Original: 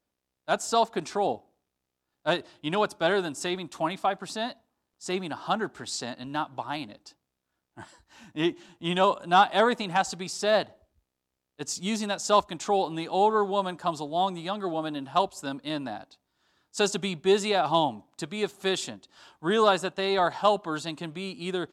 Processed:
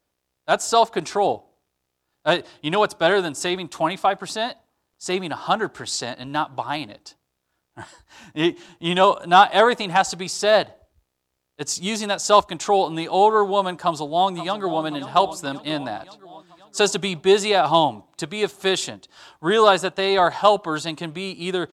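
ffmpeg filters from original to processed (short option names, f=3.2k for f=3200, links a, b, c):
-filter_complex "[0:a]asplit=2[a][b];[b]afade=t=in:st=13.83:d=0.01,afade=t=out:st=14.83:d=0.01,aecho=0:1:530|1060|1590|2120|2650|3180|3710:0.223872|0.134323|0.080594|0.0483564|0.0290138|0.0174083|0.010445[c];[a][c]amix=inputs=2:normalize=0,equalizer=f=230:t=o:w=0.54:g=-6.5,volume=7dB"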